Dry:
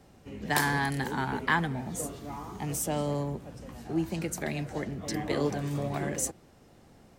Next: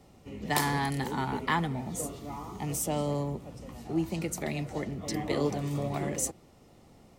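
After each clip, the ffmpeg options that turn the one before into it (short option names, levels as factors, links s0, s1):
-af "bandreject=f=1600:w=5"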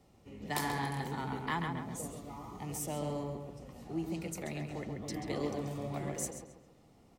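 -filter_complex "[0:a]asplit=2[s0][s1];[s1]adelay=135,lowpass=f=3400:p=1,volume=0.596,asplit=2[s2][s3];[s3]adelay=135,lowpass=f=3400:p=1,volume=0.43,asplit=2[s4][s5];[s5]adelay=135,lowpass=f=3400:p=1,volume=0.43,asplit=2[s6][s7];[s7]adelay=135,lowpass=f=3400:p=1,volume=0.43,asplit=2[s8][s9];[s9]adelay=135,lowpass=f=3400:p=1,volume=0.43[s10];[s0][s2][s4][s6][s8][s10]amix=inputs=6:normalize=0,volume=0.422"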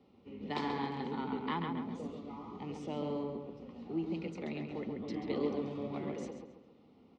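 -af "highpass=100,equalizer=f=130:t=q:w=4:g=-10,equalizer=f=240:t=q:w=4:g=7,equalizer=f=430:t=q:w=4:g=4,equalizer=f=670:t=q:w=4:g=-6,equalizer=f=1700:t=q:w=4:g=-9,lowpass=f=4000:w=0.5412,lowpass=f=4000:w=1.3066"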